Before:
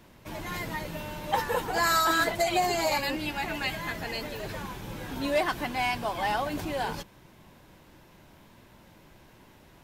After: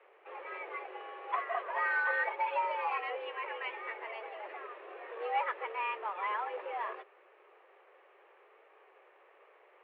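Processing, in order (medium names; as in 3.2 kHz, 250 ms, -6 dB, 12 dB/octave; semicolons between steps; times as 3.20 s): companded quantiser 4-bit; mistuned SSB +210 Hz 190–2400 Hz; trim -6.5 dB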